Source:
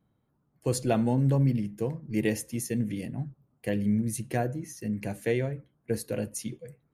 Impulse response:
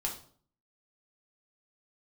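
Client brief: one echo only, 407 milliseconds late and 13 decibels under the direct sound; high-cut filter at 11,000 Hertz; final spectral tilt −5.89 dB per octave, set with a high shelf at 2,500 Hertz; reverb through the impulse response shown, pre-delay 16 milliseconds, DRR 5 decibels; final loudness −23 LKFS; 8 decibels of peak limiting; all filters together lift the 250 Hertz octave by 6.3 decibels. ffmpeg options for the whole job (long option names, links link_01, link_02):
-filter_complex "[0:a]lowpass=11000,equalizer=frequency=250:width_type=o:gain=7.5,highshelf=frequency=2500:gain=4,alimiter=limit=-17.5dB:level=0:latency=1,aecho=1:1:407:0.224,asplit=2[link_01][link_02];[1:a]atrim=start_sample=2205,adelay=16[link_03];[link_02][link_03]afir=irnorm=-1:irlink=0,volume=-8dB[link_04];[link_01][link_04]amix=inputs=2:normalize=0,volume=4.5dB"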